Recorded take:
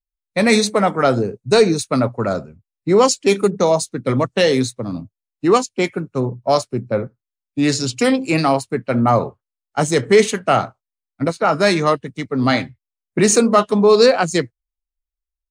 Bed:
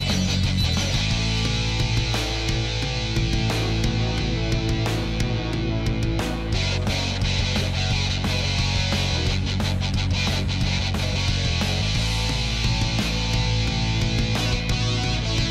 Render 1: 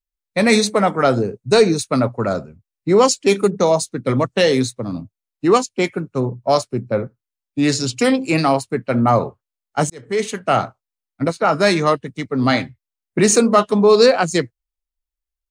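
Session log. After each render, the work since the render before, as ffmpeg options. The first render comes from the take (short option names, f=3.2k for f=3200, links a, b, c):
-filter_complex "[0:a]asplit=2[a][b];[a]atrim=end=9.9,asetpts=PTS-STARTPTS,afade=t=out:st=9.896:d=0.004:c=hsin[c];[b]atrim=start=9.9,asetpts=PTS-STARTPTS,afade=t=in:d=0.72[d];[c][d]concat=n=2:v=0:a=1"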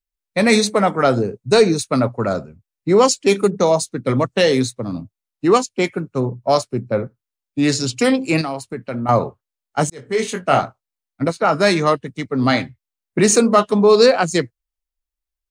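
-filter_complex "[0:a]asettb=1/sr,asplit=3[a][b][c];[a]atrim=end=8.414[d];[b]atrim=start=8.41:end=9.09,asetpts=PTS-STARTPTS,afade=t=in:d=0.004:c=qsin,afade=t=out:st=0.676:d=0.004:c=qsin,acompressor=threshold=-25dB:ratio=2.5:attack=3.2:release=140:knee=1:detection=peak[e];[c]atrim=start=9.086[f];[d][e]acrossfade=d=0.004:c1=hsin:c2=qsin[g];[g][f]acrossfade=d=0.004:c1=qsin:c2=hsin,asettb=1/sr,asplit=3[h][i][j];[h]atrim=end=9.954[k];[i]atrim=start=9.95:end=10.61,asetpts=PTS-STARTPTS,afade=t=in:d=0.004:c=qsin,afade=t=out:st=0.656:d=0.004:c=qsin,asplit=2[l][m];[m]adelay=22,volume=-5.5dB[n];[l][n]amix=inputs=2:normalize=0,atrim=end_sample=29106[o];[j]atrim=start=10.606[p];[k][o]acrossfade=d=0.004:c1=hsin:c2=qsin[q];[q][p]acrossfade=d=0.004:c1=qsin:c2=hsin"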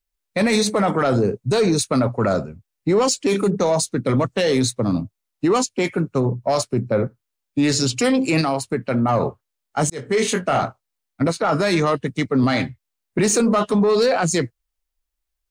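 -af "acontrast=38,alimiter=limit=-11.5dB:level=0:latency=1:release=26"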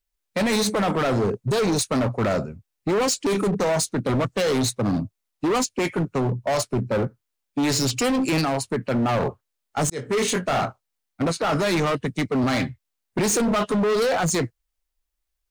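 -af "asoftclip=type=hard:threshold=-19dB"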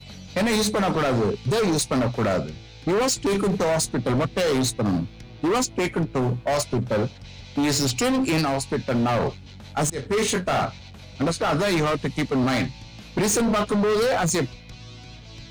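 -filter_complex "[1:a]volume=-19dB[a];[0:a][a]amix=inputs=2:normalize=0"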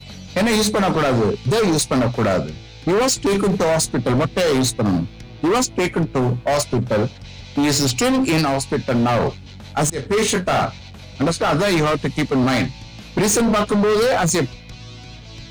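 -af "volume=4.5dB"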